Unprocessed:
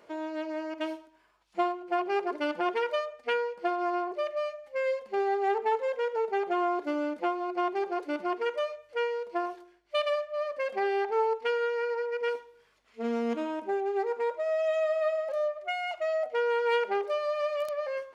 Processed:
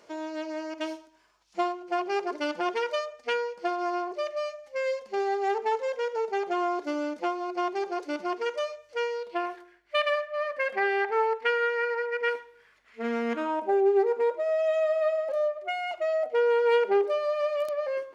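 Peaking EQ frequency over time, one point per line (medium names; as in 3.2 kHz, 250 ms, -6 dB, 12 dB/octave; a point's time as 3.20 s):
peaking EQ +10.5 dB 0.99 oct
9.13 s 5.9 kHz
9.53 s 1.8 kHz
13.33 s 1.8 kHz
13.91 s 330 Hz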